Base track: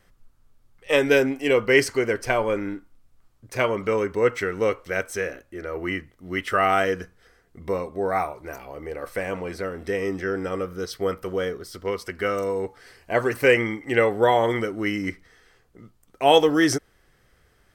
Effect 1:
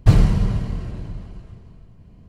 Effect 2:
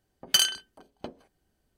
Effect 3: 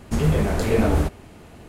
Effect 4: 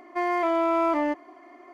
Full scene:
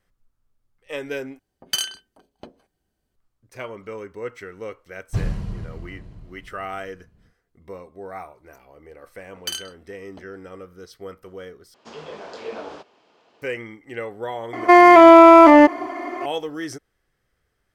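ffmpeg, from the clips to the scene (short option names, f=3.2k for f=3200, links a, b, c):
-filter_complex "[2:a]asplit=2[a][b];[0:a]volume=-11.5dB[c];[3:a]highpass=470,equalizer=f=480:t=q:w=4:g=3,equalizer=f=1k:t=q:w=4:g=4,equalizer=f=2k:t=q:w=4:g=-4,equalizer=f=3.2k:t=q:w=4:g=4,equalizer=f=5k:t=q:w=4:g=4,lowpass=f=5.8k:w=0.5412,lowpass=f=5.8k:w=1.3066[d];[4:a]alimiter=level_in=19.5dB:limit=-1dB:release=50:level=0:latency=1[e];[c]asplit=3[f][g][h];[f]atrim=end=1.394[i];[a]atrim=end=1.77,asetpts=PTS-STARTPTS,volume=-2.5dB[j];[g]atrim=start=3.156:end=11.744[k];[d]atrim=end=1.68,asetpts=PTS-STARTPTS,volume=-10dB[l];[h]atrim=start=13.416[m];[1:a]atrim=end=2.28,asetpts=PTS-STARTPTS,volume=-11dB,afade=t=in:d=0.1,afade=t=out:st=2.18:d=0.1,adelay=5070[n];[b]atrim=end=1.77,asetpts=PTS-STARTPTS,volume=-7.5dB,afade=t=in:d=0.004:c=hsin,afade=t=out:st=1.766:d=0.004:c=hsin,adelay=9130[o];[e]atrim=end=1.73,asetpts=PTS-STARTPTS,volume=-0.5dB,afade=t=in:d=0.004:c=hsin,afade=t=out:st=1.726:d=0.004:c=hsin,adelay=14530[p];[i][j]acrossfade=d=0.004:c1=hsin:c2=hsin[q];[q][k]acrossfade=d=0.004:c1=hsin:c2=hsin[r];[r][l]acrossfade=d=0.004:c1=hsin:c2=hsin[s];[s][m]acrossfade=d=0.004:c1=hsin:c2=hsin[t];[t][n][o][p]amix=inputs=4:normalize=0"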